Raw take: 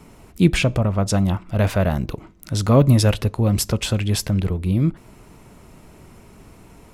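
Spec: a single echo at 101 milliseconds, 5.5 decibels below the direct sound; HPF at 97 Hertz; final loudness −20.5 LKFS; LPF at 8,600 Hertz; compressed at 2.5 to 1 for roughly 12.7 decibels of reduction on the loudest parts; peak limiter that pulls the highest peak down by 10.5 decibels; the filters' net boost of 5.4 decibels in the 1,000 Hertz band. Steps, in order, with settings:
high-pass filter 97 Hz
low-pass filter 8,600 Hz
parametric band 1,000 Hz +7 dB
downward compressor 2.5 to 1, threshold −28 dBFS
brickwall limiter −23.5 dBFS
single-tap delay 101 ms −5.5 dB
level +12.5 dB

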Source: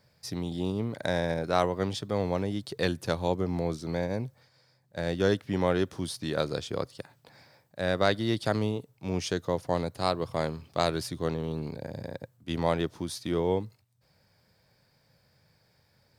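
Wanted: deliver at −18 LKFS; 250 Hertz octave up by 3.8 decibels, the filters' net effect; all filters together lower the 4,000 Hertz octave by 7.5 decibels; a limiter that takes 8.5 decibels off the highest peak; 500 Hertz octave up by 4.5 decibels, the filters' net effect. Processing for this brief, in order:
parametric band 250 Hz +4 dB
parametric band 500 Hz +4.5 dB
parametric band 4,000 Hz −9 dB
level +11.5 dB
brickwall limiter −5 dBFS

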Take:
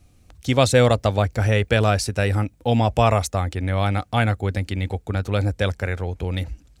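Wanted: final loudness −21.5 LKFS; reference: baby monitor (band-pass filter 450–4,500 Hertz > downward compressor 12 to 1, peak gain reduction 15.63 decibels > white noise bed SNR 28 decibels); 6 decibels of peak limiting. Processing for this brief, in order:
brickwall limiter −8 dBFS
band-pass filter 450–4,500 Hz
downward compressor 12 to 1, threshold −32 dBFS
white noise bed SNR 28 dB
level +16.5 dB

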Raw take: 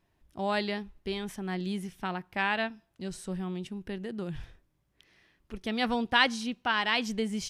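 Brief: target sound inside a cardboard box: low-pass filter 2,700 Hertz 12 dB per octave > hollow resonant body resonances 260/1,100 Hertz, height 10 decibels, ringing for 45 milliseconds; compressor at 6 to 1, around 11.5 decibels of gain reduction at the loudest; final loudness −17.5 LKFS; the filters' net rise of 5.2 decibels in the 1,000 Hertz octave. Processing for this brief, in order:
parametric band 1,000 Hz +6.5 dB
downward compressor 6 to 1, threshold −27 dBFS
low-pass filter 2,700 Hz 12 dB per octave
hollow resonant body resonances 260/1,100 Hz, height 10 dB, ringing for 45 ms
level +14.5 dB

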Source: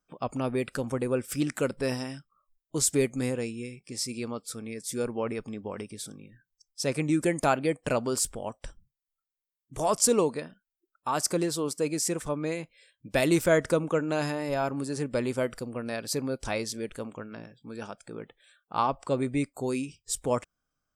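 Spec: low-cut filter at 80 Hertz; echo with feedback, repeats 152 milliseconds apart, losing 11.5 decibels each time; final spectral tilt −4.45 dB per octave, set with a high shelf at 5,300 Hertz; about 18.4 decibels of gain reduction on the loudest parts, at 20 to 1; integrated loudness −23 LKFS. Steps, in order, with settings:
high-pass filter 80 Hz
high-shelf EQ 5,300 Hz −5.5 dB
downward compressor 20 to 1, threshold −37 dBFS
repeating echo 152 ms, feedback 27%, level −11.5 dB
level +19.5 dB

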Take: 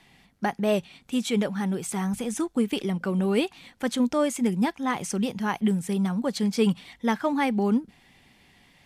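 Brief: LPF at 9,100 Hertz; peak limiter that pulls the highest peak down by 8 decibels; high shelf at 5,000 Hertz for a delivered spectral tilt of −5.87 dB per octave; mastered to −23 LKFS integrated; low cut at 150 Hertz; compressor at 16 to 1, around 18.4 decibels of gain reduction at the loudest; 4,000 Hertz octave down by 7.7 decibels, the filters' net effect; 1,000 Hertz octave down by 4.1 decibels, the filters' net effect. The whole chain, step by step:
high-pass filter 150 Hz
low-pass filter 9,100 Hz
parametric band 1,000 Hz −4.5 dB
parametric band 4,000 Hz −6.5 dB
high-shelf EQ 5,000 Hz −8.5 dB
downward compressor 16 to 1, threshold −38 dBFS
level +22 dB
brickwall limiter −14.5 dBFS

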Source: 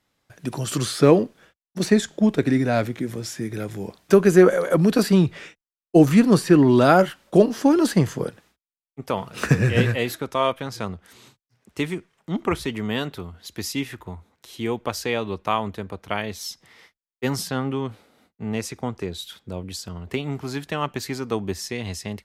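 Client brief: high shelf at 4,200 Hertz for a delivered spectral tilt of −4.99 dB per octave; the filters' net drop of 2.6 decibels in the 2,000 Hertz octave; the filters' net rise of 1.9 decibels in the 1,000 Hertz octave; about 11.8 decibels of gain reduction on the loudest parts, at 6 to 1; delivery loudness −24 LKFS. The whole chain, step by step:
parametric band 1,000 Hz +4 dB
parametric band 2,000 Hz −6 dB
high-shelf EQ 4,200 Hz +4 dB
downward compressor 6 to 1, threshold −21 dBFS
level +4.5 dB

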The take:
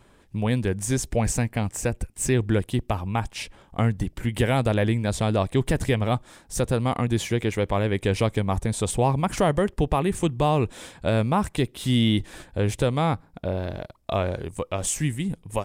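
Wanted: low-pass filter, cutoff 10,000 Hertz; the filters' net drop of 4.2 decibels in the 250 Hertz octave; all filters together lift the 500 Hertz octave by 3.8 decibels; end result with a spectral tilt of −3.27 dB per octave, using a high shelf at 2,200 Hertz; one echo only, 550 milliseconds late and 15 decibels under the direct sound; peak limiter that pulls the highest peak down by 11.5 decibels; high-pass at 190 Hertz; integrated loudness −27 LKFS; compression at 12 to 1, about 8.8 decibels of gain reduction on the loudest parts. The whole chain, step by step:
high-pass filter 190 Hz
low-pass filter 10,000 Hz
parametric band 250 Hz −5 dB
parametric band 500 Hz +5.5 dB
high-shelf EQ 2,200 Hz +6.5 dB
downward compressor 12 to 1, threshold −24 dBFS
brickwall limiter −21.5 dBFS
single-tap delay 550 ms −15 dB
level +6.5 dB

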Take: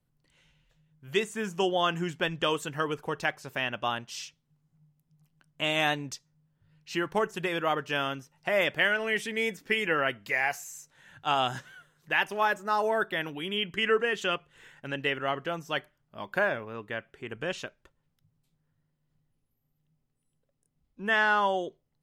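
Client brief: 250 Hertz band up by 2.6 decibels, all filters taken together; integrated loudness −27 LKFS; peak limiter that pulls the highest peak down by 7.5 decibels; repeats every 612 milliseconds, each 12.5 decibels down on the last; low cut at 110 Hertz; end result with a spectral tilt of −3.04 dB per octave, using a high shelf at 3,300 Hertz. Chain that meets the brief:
high-pass filter 110 Hz
parametric band 250 Hz +4 dB
high-shelf EQ 3,300 Hz +8 dB
brickwall limiter −16.5 dBFS
repeating echo 612 ms, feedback 24%, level −12.5 dB
level +2.5 dB

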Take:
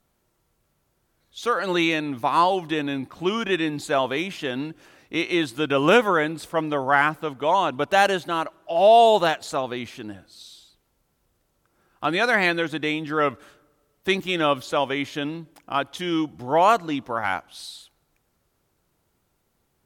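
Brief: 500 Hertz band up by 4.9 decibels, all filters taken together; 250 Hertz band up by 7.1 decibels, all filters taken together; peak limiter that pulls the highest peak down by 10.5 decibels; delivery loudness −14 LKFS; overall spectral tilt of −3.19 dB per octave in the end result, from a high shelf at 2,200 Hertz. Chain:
parametric band 250 Hz +8 dB
parametric band 500 Hz +4 dB
high-shelf EQ 2,200 Hz +6 dB
level +8 dB
brickwall limiter −2.5 dBFS

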